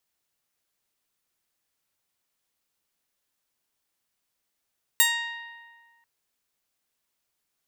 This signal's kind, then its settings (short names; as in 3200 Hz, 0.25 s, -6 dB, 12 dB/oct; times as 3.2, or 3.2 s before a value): plucked string A#5, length 1.04 s, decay 1.71 s, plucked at 0.19, bright